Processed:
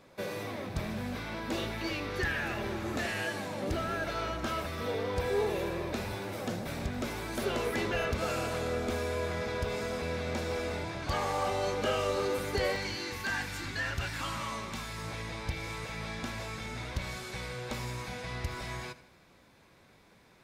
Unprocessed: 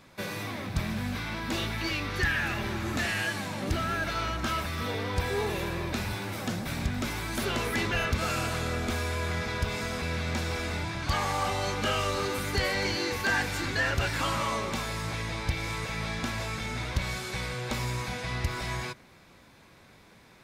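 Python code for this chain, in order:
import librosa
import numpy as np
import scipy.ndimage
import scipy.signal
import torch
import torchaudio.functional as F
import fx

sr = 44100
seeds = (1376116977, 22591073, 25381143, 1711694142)

y = fx.peak_eq(x, sr, hz=500.0, db=fx.steps((0.0, 9.0), (12.76, -5.0), (14.98, 2.5)), octaves=1.3)
y = fx.echo_feedback(y, sr, ms=77, feedback_pct=53, wet_db=-17)
y = y * 10.0 ** (-6.0 / 20.0)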